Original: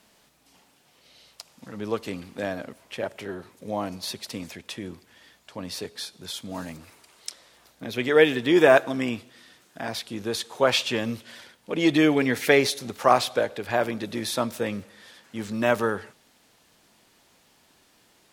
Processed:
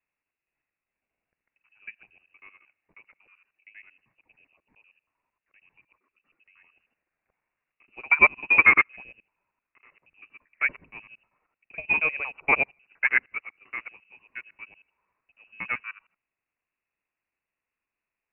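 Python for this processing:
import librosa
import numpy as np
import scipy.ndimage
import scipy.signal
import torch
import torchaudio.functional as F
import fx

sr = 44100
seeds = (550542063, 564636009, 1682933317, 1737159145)

y = fx.local_reverse(x, sr, ms=78.0)
y = fx.freq_invert(y, sr, carrier_hz=2800)
y = fx.upward_expand(y, sr, threshold_db=-31.0, expansion=2.5)
y = F.gain(torch.from_numpy(y), 2.0).numpy()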